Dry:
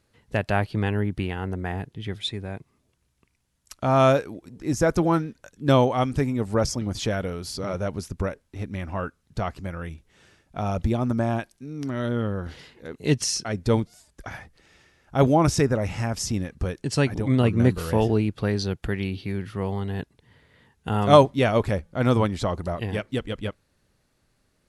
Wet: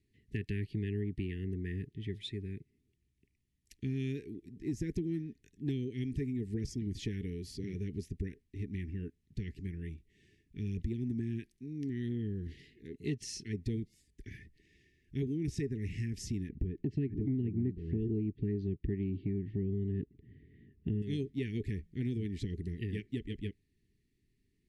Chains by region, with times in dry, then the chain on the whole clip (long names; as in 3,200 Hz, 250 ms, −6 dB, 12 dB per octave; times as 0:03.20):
0:16.49–0:21.02: low-pass filter 2,300 Hz + low shelf with overshoot 470 Hz +8 dB, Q 1.5
whole clip: Chebyshev band-stop filter 420–1,800 Hz, order 5; high-shelf EQ 2,500 Hz −11 dB; downward compressor 6 to 1, threshold −26 dBFS; level −5.5 dB